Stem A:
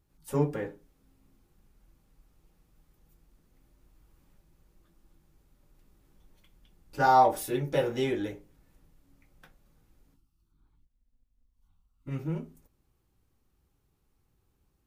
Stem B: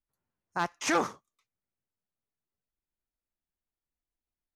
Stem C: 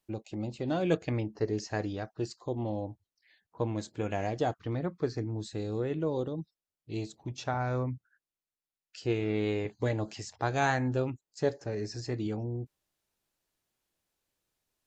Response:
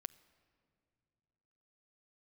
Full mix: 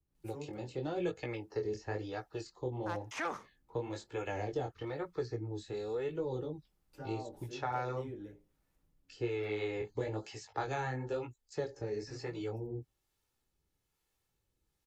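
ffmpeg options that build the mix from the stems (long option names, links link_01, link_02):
-filter_complex "[0:a]acrossover=split=490[link_01][link_02];[link_02]acompressor=threshold=-53dB:ratio=2[link_03];[link_01][link_03]amix=inputs=2:normalize=0,volume=-10.5dB[link_04];[1:a]adelay=2300,volume=-6.5dB[link_05];[2:a]aecho=1:1:2.3:0.48,flanger=delay=16:depth=8:speed=0.98,adelay=150,volume=2.5dB[link_06];[link_04][link_05][link_06]amix=inputs=3:normalize=0,acrossover=split=160|320|3100[link_07][link_08][link_09][link_10];[link_07]acompressor=threshold=-43dB:ratio=4[link_11];[link_08]acompressor=threshold=-50dB:ratio=4[link_12];[link_09]acompressor=threshold=-31dB:ratio=4[link_13];[link_10]acompressor=threshold=-53dB:ratio=4[link_14];[link_11][link_12][link_13][link_14]amix=inputs=4:normalize=0,acrossover=split=480[link_15][link_16];[link_15]aeval=exprs='val(0)*(1-0.5/2+0.5/2*cos(2*PI*1.1*n/s))':channel_layout=same[link_17];[link_16]aeval=exprs='val(0)*(1-0.5/2-0.5/2*cos(2*PI*1.1*n/s))':channel_layout=same[link_18];[link_17][link_18]amix=inputs=2:normalize=0"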